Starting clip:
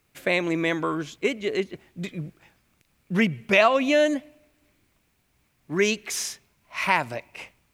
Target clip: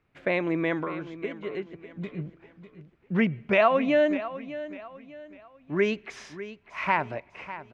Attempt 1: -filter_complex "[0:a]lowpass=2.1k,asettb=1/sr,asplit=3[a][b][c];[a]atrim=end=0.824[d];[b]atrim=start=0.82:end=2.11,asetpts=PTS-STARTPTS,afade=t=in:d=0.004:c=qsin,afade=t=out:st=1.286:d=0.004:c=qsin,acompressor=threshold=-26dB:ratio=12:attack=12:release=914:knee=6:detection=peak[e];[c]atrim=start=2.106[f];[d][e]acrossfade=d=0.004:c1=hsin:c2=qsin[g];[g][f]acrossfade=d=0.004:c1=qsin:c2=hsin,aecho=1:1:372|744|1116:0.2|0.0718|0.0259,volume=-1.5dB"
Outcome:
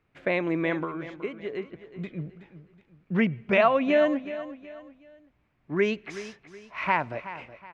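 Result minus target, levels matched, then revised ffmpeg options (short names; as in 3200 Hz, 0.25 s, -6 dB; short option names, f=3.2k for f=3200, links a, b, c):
echo 0.227 s early
-filter_complex "[0:a]lowpass=2.1k,asettb=1/sr,asplit=3[a][b][c];[a]atrim=end=0.824[d];[b]atrim=start=0.82:end=2.11,asetpts=PTS-STARTPTS,afade=t=in:d=0.004:c=qsin,afade=t=out:st=1.286:d=0.004:c=qsin,acompressor=threshold=-26dB:ratio=12:attack=12:release=914:knee=6:detection=peak[e];[c]atrim=start=2.106[f];[d][e]acrossfade=d=0.004:c1=hsin:c2=qsin[g];[g][f]acrossfade=d=0.004:c1=qsin:c2=hsin,aecho=1:1:599|1198|1797:0.2|0.0718|0.0259,volume=-1.5dB"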